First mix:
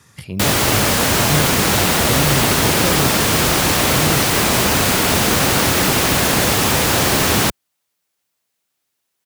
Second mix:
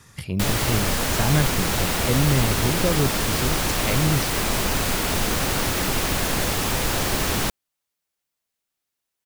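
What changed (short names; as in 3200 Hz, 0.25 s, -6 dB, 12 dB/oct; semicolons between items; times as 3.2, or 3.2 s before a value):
background -8.5 dB; master: remove HPF 82 Hz 12 dB/oct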